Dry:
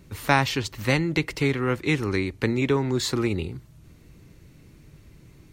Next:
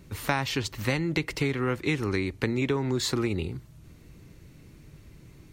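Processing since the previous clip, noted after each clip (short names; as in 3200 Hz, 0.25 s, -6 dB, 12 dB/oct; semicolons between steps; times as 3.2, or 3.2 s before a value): compressor 4:1, threshold -23 dBFS, peak gain reduction 8.5 dB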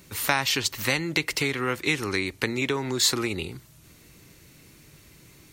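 tilt +2.5 dB/oct; gain +3 dB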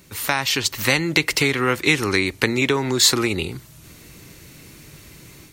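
AGC gain up to 7 dB; gain +1.5 dB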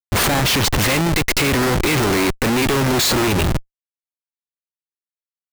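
Schmitt trigger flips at -27.5 dBFS; gain +6 dB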